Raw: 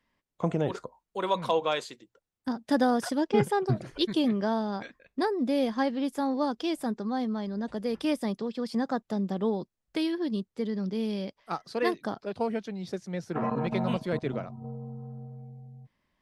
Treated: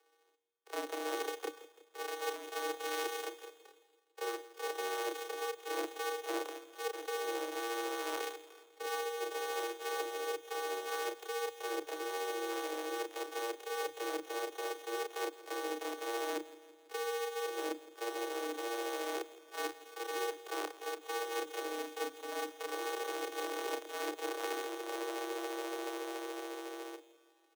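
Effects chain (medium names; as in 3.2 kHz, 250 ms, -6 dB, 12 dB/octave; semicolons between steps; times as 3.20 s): sorted samples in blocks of 128 samples; steep high-pass 180 Hz 96 dB/octave; reverse; compression 12:1, threshold -40 dBFS, peak gain reduction 21.5 dB; reverse; frequency shift +120 Hz; granular stretch 1.7×, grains 143 ms; feedback delay 166 ms, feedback 57%, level -18 dB; trim +6 dB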